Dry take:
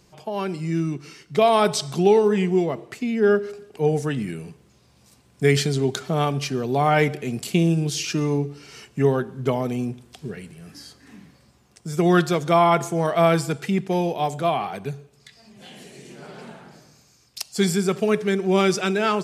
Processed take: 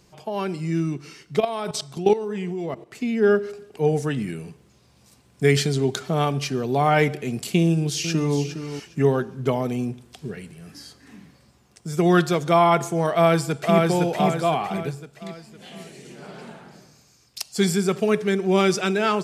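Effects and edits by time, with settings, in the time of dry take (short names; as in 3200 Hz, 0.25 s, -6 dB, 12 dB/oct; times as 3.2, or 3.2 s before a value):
1.4–2.95 level quantiser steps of 14 dB
7.63–8.38 echo throw 0.41 s, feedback 20%, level -10 dB
13.12–13.81 echo throw 0.51 s, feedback 45%, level -2 dB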